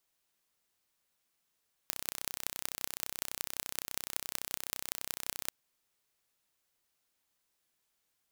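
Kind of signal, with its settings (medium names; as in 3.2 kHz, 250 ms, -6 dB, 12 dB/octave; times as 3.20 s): pulse train 31.8 per s, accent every 6, -5 dBFS 3.61 s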